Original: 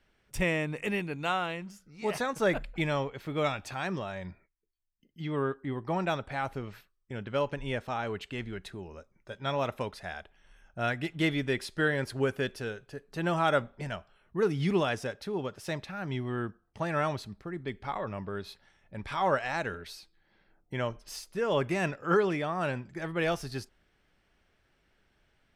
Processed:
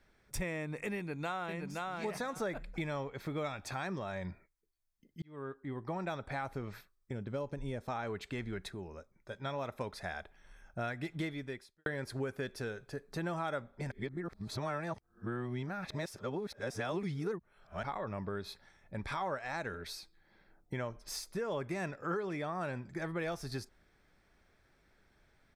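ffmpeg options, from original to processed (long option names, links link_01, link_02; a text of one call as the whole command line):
ffmpeg -i in.wav -filter_complex "[0:a]asplit=2[link_01][link_02];[link_02]afade=type=in:start_time=0.96:duration=0.01,afade=type=out:start_time=1.84:duration=0.01,aecho=0:1:520|1040|1560:0.473151|0.0946303|0.0189261[link_03];[link_01][link_03]amix=inputs=2:normalize=0,asettb=1/sr,asplit=3[link_04][link_05][link_06];[link_04]atrim=end=7.134[link_07];[link_05]atrim=start=7.13:end=7.88,asetpts=PTS-STARTPTS,afade=type=in:duration=0.004:curve=qsin,afade=type=out:start_time=0.746:duration=0.004:curve=qsin,equalizer=frequency=1800:width=0.5:gain=-9.5[link_08];[link_06]atrim=start=7.876[link_09];[link_07][link_08]acrossfade=duration=0.004:curve1=hsin:curve2=qsin[link_10];[link_10][link_09]acrossfade=duration=0.004:curve1=qsin:curve2=hsin,asplit=7[link_11][link_12][link_13][link_14][link_15][link_16][link_17];[link_11]atrim=end=5.22,asetpts=PTS-STARTPTS,afade=type=out:start_time=5.216:duration=0.004:curve=hsin[link_18];[link_12]atrim=start=5.22:end=8.692,asetpts=PTS-STARTPTS,afade=type=in:duration=1.07[link_19];[link_13]atrim=start=8.688:end=9.812,asetpts=PTS-STARTPTS,volume=-3.5dB[link_20];[link_14]atrim=start=9.808:end=11.86,asetpts=PTS-STARTPTS,afade=type=out:start_time=1.382:duration=0.67:curve=qua[link_21];[link_15]atrim=start=11.86:end=13.912,asetpts=PTS-STARTPTS,afade=type=in:duration=0.004:curve=hsin[link_22];[link_16]atrim=start=13.908:end=17.832,asetpts=PTS-STARTPTS,areverse[link_23];[link_17]atrim=start=17.828[link_24];[link_18][link_19]concat=n=2:v=0:a=1[link_25];[link_25][link_20]acrossfade=duration=0.004:curve1=hsin:curve2=hsin[link_26];[link_21][link_22]concat=n=2:v=0:a=1[link_27];[link_26][link_27]acrossfade=duration=0.004:curve1=hsin:curve2=hsin[link_28];[link_28][link_23]acrossfade=duration=0.004:curve1=hsin:curve2=hsin[link_29];[link_29][link_24]acrossfade=duration=0.004:curve1=hsin:curve2=hsin,acompressor=threshold=-37dB:ratio=4,equalizer=frequency=2900:width=7.8:gain=-14,volume=1.5dB" out.wav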